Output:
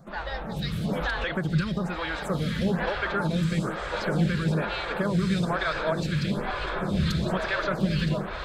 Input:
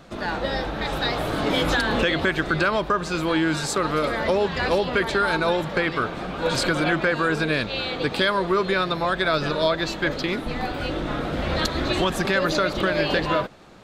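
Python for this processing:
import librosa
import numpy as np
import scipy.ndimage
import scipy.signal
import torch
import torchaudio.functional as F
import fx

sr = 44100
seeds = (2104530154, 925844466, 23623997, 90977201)

y = fx.low_shelf_res(x, sr, hz=230.0, db=6.0, q=3.0)
y = fx.stretch_vocoder(y, sr, factor=0.61)
y = fx.echo_diffused(y, sr, ms=1531, feedback_pct=58, wet_db=-4)
y = fx.stagger_phaser(y, sr, hz=1.1)
y = F.gain(torch.from_numpy(y), -3.5).numpy()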